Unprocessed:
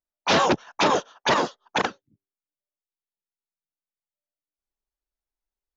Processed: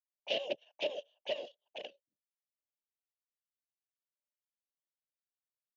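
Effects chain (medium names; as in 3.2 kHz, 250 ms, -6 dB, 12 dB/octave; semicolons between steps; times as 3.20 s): dynamic bell 930 Hz, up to -7 dB, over -37 dBFS, Q 2.4; level held to a coarse grid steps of 10 dB; two resonant band-passes 1.3 kHz, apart 2.3 oct; trim -3 dB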